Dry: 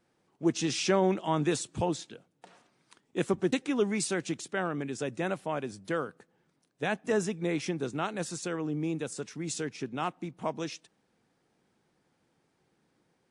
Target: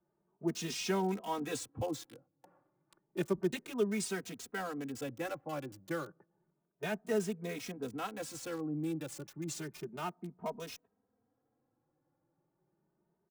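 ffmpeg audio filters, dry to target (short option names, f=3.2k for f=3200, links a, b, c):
-filter_complex "[0:a]acrossover=split=370|410|1400[a][b][c][d];[d]acrusher=bits=6:mix=0:aa=0.000001[e];[a][b][c][e]amix=inputs=4:normalize=0,asplit=2[f][g];[g]adelay=2.9,afreqshift=0.31[h];[f][h]amix=inputs=2:normalize=1,volume=-3.5dB"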